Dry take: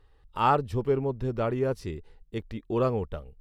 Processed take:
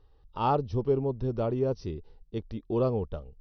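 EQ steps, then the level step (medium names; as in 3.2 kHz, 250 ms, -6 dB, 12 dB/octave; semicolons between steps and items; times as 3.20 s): peaking EQ 2 kHz -11 dB 1.1 oct; dynamic bell 1.5 kHz, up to -5 dB, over -44 dBFS, Q 1.7; brick-wall FIR low-pass 6.1 kHz; 0.0 dB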